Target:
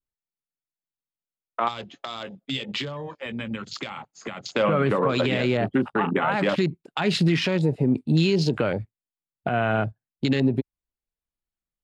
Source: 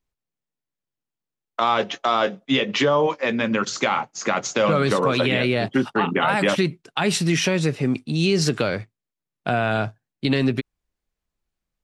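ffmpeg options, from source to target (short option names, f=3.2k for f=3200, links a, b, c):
-filter_complex "[0:a]afwtdn=0.0282,alimiter=limit=-16.5dB:level=0:latency=1:release=242,equalizer=f=5.8k:w=6.6:g=-12,asettb=1/sr,asplit=3[a][b][c];[a]atrim=end=1.684[d];[b]atrim=start=1.68:end=4.49,asetpts=PTS-STARTPTS,afade=t=in:d=0.004:c=qsin,afade=t=out:st=2.806:d=0.004:c=qsin,acrossover=split=150|3000[e][f][g];[f]acompressor=threshold=-38dB:ratio=10[h];[e][h][g]amix=inputs=3:normalize=0[i];[c]atrim=start=4.486[j];[d][i]acrossfade=d=0.004:c1=hsin:c2=qsin[k];[k][j]acrossfade=d=0.004:c1=qsin:c2=hsin,adynamicequalizer=threshold=0.00794:dfrequency=2400:dqfactor=0.82:tfrequency=2400:tqfactor=0.82:attack=5:release=100:ratio=0.375:range=2:mode=cutabove:tftype=bell,volume=4.5dB"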